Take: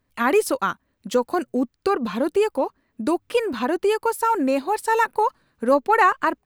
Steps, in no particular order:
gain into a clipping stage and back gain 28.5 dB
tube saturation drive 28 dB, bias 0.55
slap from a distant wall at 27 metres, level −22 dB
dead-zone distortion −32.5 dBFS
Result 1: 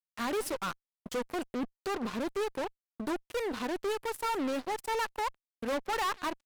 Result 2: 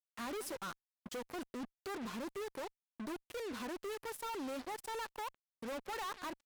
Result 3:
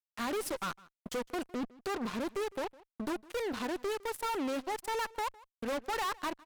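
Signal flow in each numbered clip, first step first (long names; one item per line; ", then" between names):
slap from a distant wall, then dead-zone distortion, then tube saturation, then gain into a clipping stage and back
slap from a distant wall, then gain into a clipping stage and back, then dead-zone distortion, then tube saturation
dead-zone distortion, then gain into a clipping stage and back, then tube saturation, then slap from a distant wall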